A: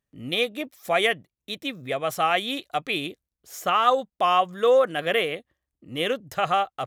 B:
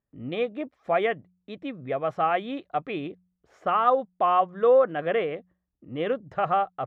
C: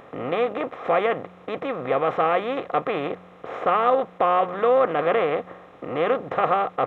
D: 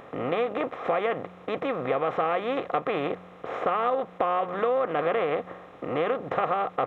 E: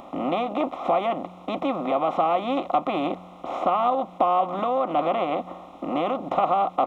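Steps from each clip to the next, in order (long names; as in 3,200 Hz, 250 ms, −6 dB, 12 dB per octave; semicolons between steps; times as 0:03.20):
low-pass filter 1,400 Hz 12 dB per octave; hum removal 90.47 Hz, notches 2
compressor on every frequency bin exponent 0.4; level −2.5 dB
downward compressor 5 to 1, threshold −22 dBFS, peak gain reduction 7.5 dB
phaser with its sweep stopped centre 450 Hz, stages 6; level +7 dB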